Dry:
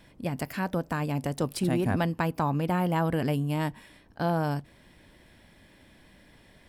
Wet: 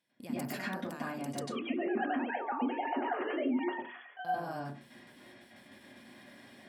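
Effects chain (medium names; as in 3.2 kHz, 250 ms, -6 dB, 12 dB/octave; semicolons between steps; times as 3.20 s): 1.41–4.25 s: formants replaced by sine waves; peak limiter -24.5 dBFS, peak gain reduction 10 dB; compression, threshold -35 dBFS, peak gain reduction 8 dB; high-pass 200 Hz 12 dB/octave; gate with hold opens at -48 dBFS; treble shelf 2.4 kHz +8.5 dB; reverberation RT60 0.40 s, pre-delay 92 ms, DRR -8 dB; trim -7 dB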